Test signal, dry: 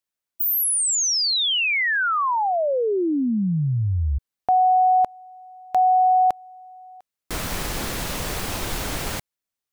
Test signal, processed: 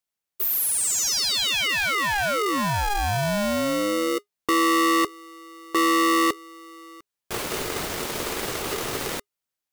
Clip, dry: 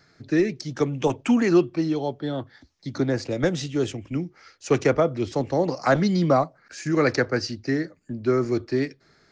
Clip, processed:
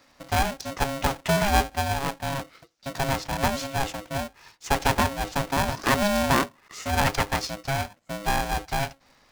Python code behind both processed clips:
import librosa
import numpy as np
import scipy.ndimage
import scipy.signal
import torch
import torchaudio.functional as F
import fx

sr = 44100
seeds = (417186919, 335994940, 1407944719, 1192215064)

y = fx.diode_clip(x, sr, knee_db=-23.5)
y = y * np.sign(np.sin(2.0 * np.pi * 410.0 * np.arange(len(y)) / sr))